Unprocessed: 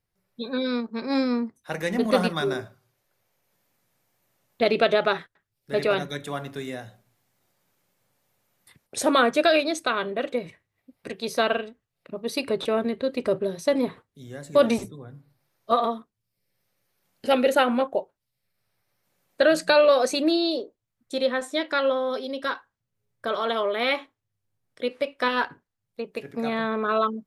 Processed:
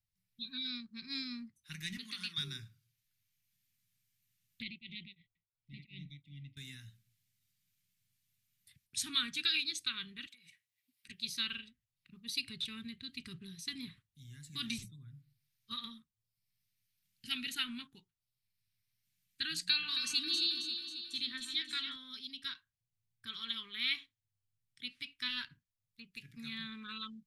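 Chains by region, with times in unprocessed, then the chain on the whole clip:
0:01.97–0:02.38: meter weighting curve A + downward compressor 10 to 1, threshold −23 dBFS
0:04.62–0:06.57: linear-phase brick-wall band-stop 390–1,900 Hz + high-frequency loss of the air 380 metres + tremolo along a rectified sine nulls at 2.8 Hz
0:10.26–0:11.09: high-pass filter 350 Hz 6 dB per octave + spectral tilt +2 dB per octave + downward compressor 5 to 1, threshold −44 dBFS
0:19.64–0:21.96: notch filter 640 Hz, Q 5.1 + delay that swaps between a low-pass and a high-pass 135 ms, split 1,400 Hz, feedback 74%, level −4.5 dB
whole clip: dynamic equaliser 3,900 Hz, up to +5 dB, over −45 dBFS, Q 1.7; Chebyshev band-stop filter 130–2,800 Hz, order 2; level −7 dB

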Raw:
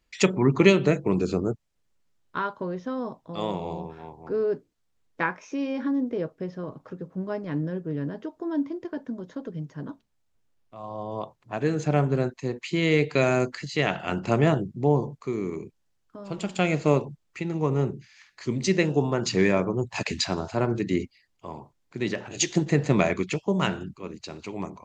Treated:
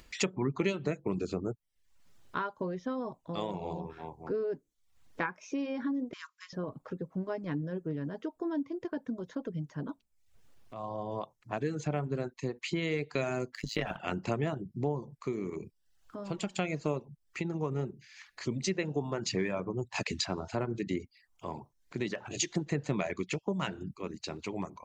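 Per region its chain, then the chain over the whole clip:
0:06.13–0:06.53: one scale factor per block 7 bits + linear-phase brick-wall band-pass 950–7,500 Hz + high-shelf EQ 3,300 Hz +11 dB
0:13.54–0:13.97: downward expander −37 dBFS + leveller curve on the samples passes 1 + amplitude modulation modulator 110 Hz, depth 75%
whole clip: downward compressor 2.5 to 1, threshold −32 dBFS; reverb reduction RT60 0.55 s; upward compression, threshold −45 dBFS

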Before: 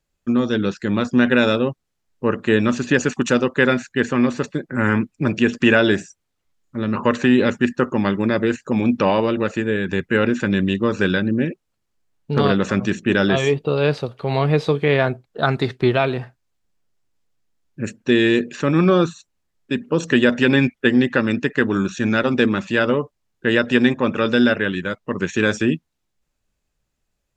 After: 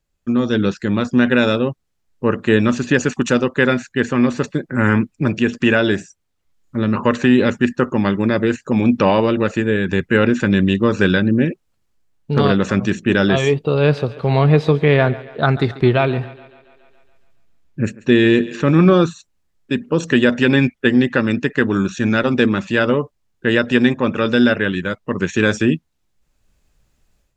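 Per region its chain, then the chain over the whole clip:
0:13.74–0:18.94: bass and treble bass +2 dB, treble −5 dB + feedback echo with a high-pass in the loop 140 ms, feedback 55%, high-pass 200 Hz, level −17.5 dB
whole clip: low-shelf EQ 120 Hz +5 dB; automatic gain control; level −1 dB

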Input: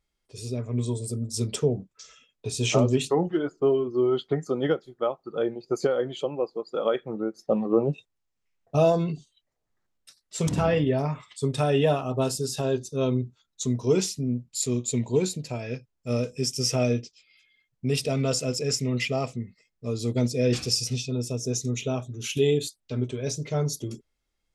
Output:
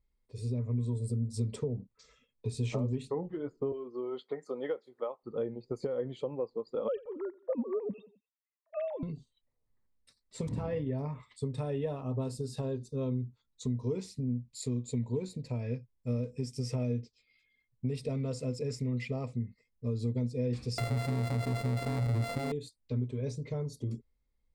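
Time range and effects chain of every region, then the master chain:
0:03.72–0:05.23: high-pass filter 480 Hz + upward compression, threshold −43 dBFS
0:06.88–0:09.03: three sine waves on the formant tracks + repeating echo 88 ms, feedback 49%, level −23.5 dB
0:20.78–0:22.52: samples sorted by size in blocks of 64 samples + mains-hum notches 50/100/150 Hz + envelope flattener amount 100%
whole clip: spectral tilt −2.5 dB per octave; downward compressor 4 to 1, threshold −24 dBFS; EQ curve with evenly spaced ripples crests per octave 0.96, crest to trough 7 dB; level −8 dB

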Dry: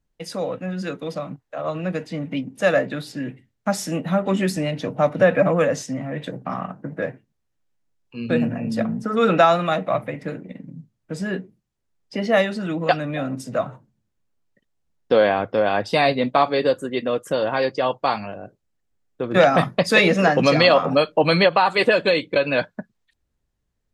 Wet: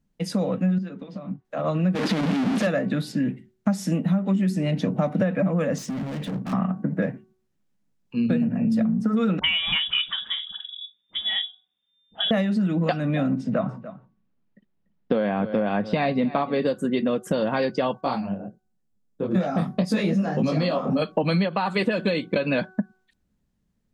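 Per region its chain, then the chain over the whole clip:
0:00.78–0:01.45: downward compressor 10 to 1, threshold −35 dBFS + high-frequency loss of the air 140 metres + notch comb filter 160 Hz
0:01.95–0:02.67: linear delta modulator 64 kbit/s, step −16 dBFS + three-way crossover with the lows and the highs turned down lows −14 dB, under 190 Hz, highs −16 dB, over 4,800 Hz
0:05.78–0:06.53: leveller curve on the samples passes 1 + high-shelf EQ 5,800 Hz −5 dB + gain into a clipping stage and back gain 34.5 dB
0:09.39–0:12.31: voice inversion scrambler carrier 3,600 Hz + all-pass dispersion highs, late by 52 ms, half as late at 970 Hz
0:13.34–0:16.62: low-pass filter 3,200 Hz + single-tap delay 291 ms −18 dB
0:18.01–0:21.02: parametric band 2,200 Hz −6 dB 1.6 octaves + micro pitch shift up and down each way 54 cents
whole clip: parametric band 200 Hz +14.5 dB 0.79 octaves; hum removal 374.3 Hz, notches 4; downward compressor 10 to 1, threshold −19 dBFS

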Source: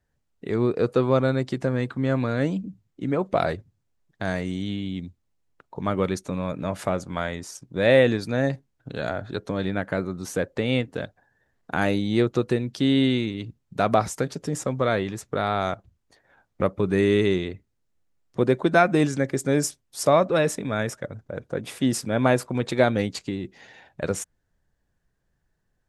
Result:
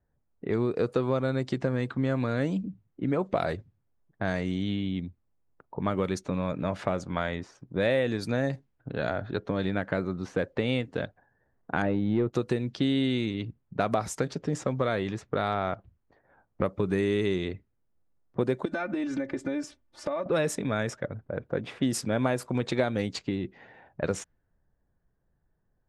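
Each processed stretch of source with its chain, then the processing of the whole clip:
0:11.82–0:12.33: leveller curve on the samples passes 1 + head-to-tape spacing loss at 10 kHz 40 dB
0:15.52–0:16.64: one scale factor per block 7 bits + treble cut that deepens with the level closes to 2,700 Hz, closed at −25.5 dBFS + low-pass filter 6,600 Hz 24 dB per octave
0:18.65–0:20.26: high-shelf EQ 9,200 Hz +4 dB + comb filter 3.4 ms, depth 94% + downward compressor 16 to 1, threshold −26 dBFS
whole clip: low-pass that shuts in the quiet parts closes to 1,200 Hz, open at −19 dBFS; downward compressor 4 to 1, threshold −23 dBFS

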